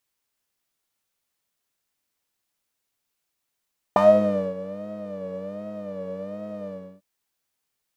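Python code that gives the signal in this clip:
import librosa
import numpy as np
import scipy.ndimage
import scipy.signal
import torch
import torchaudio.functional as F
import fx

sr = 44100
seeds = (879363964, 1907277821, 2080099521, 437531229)

y = fx.sub_patch_vibrato(sr, seeds[0], note=55, wave='triangle', wave2='saw', interval_st=19, detune_cents=29, level2_db=-6.0, sub_db=-12, noise_db=-15, kind='bandpass', cutoff_hz=350.0, q=6.0, env_oct=1.5, env_decay_s=0.23, env_sustain_pct=25, attack_ms=1.6, decay_s=0.58, sustain_db=-17.5, release_s=0.33, note_s=2.72, lfo_hz=1.3, vibrato_cents=99)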